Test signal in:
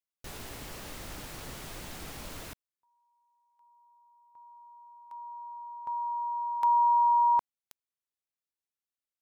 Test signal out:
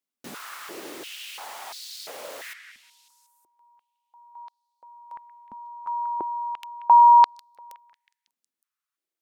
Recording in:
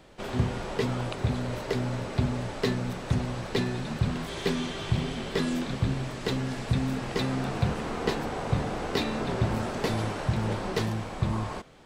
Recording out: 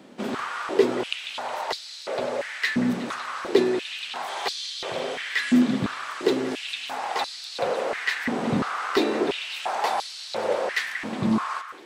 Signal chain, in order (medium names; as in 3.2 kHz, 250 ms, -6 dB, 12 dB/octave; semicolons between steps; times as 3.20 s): repeats whose band climbs or falls 183 ms, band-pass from 1.6 kHz, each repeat 0.7 oct, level -6 dB; step-sequenced high-pass 2.9 Hz 230–4300 Hz; trim +2.5 dB